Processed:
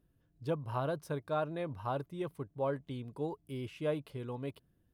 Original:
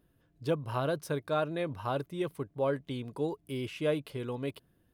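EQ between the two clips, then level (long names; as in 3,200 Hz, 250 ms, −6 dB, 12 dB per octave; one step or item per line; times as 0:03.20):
dynamic equaliser 890 Hz, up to +7 dB, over −45 dBFS, Q 1.1
low-shelf EQ 230 Hz +8 dB
−8.5 dB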